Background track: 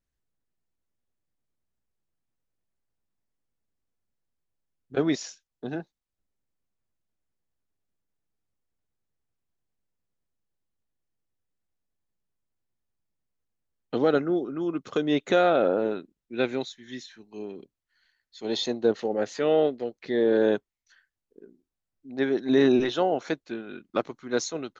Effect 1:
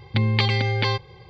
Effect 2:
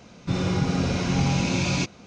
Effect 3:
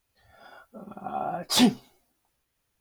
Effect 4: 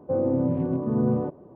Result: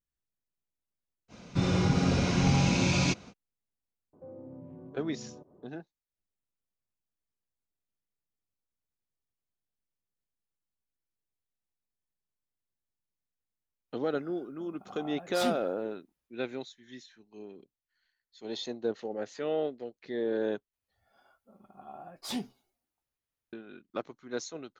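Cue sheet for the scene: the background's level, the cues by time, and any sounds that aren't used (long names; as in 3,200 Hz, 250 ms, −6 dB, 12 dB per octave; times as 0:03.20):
background track −9 dB
0:01.28: mix in 2 −2 dB, fades 0.05 s
0:04.13: mix in 4 −11.5 dB + downward compressor 2 to 1, threshold −41 dBFS
0:13.84: mix in 3 −13 dB, fades 0.10 s
0:20.73: overwrite with 3 −15.5 dB
not used: 1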